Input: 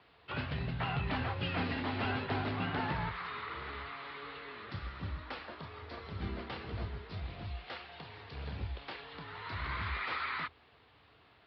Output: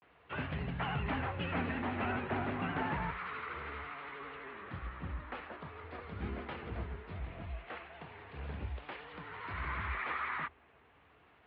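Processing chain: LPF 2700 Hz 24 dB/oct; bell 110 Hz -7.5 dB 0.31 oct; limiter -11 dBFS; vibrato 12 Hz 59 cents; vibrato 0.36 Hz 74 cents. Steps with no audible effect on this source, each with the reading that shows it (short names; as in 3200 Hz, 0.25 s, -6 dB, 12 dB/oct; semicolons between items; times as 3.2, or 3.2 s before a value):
limiter -11 dBFS: input peak -21.5 dBFS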